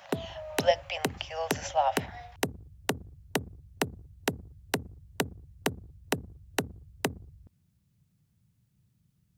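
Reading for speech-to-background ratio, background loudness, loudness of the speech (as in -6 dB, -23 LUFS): 4.0 dB, -35.5 LUFS, -31.5 LUFS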